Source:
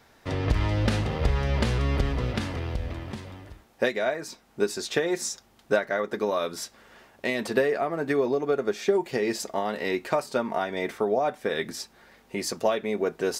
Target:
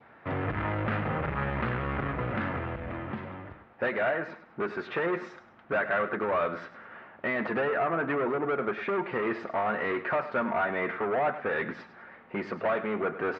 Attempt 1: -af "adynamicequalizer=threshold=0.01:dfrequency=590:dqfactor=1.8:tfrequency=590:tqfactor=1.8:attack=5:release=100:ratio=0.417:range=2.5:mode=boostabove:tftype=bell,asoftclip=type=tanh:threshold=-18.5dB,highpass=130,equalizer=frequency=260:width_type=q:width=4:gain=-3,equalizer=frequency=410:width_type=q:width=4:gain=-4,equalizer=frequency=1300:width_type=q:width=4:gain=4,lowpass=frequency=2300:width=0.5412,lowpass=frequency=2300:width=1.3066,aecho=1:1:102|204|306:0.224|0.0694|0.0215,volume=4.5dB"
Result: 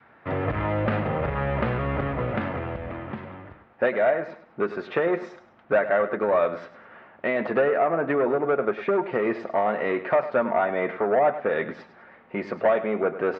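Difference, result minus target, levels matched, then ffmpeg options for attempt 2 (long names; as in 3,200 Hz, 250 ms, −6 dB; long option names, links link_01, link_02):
2,000 Hz band −4.5 dB; soft clipping: distortion −6 dB
-af "adynamicequalizer=threshold=0.01:dfrequency=1500:dqfactor=1.8:tfrequency=1500:tqfactor=1.8:attack=5:release=100:ratio=0.417:range=2.5:mode=boostabove:tftype=bell,asoftclip=type=tanh:threshold=-28dB,highpass=130,equalizer=frequency=260:width_type=q:width=4:gain=-3,equalizer=frequency=410:width_type=q:width=4:gain=-4,equalizer=frequency=1300:width_type=q:width=4:gain=4,lowpass=frequency=2300:width=0.5412,lowpass=frequency=2300:width=1.3066,aecho=1:1:102|204|306:0.224|0.0694|0.0215,volume=4.5dB"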